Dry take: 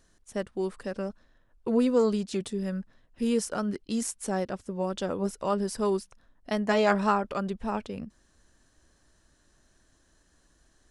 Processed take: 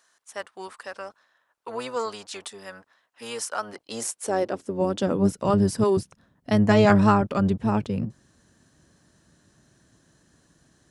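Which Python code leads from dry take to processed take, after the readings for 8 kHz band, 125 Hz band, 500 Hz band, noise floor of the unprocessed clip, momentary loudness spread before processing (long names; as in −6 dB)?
+3.5 dB, +11.0 dB, +3.0 dB, −66 dBFS, 13 LU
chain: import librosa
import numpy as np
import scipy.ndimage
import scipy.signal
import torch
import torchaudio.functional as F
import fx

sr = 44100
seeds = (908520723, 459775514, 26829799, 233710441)

y = fx.octave_divider(x, sr, octaves=1, level_db=-2.0)
y = fx.low_shelf(y, sr, hz=150.0, db=10.0)
y = fx.filter_sweep_highpass(y, sr, from_hz=970.0, to_hz=150.0, start_s=3.46, end_s=5.49, q=1.3)
y = F.gain(torch.from_numpy(y), 3.5).numpy()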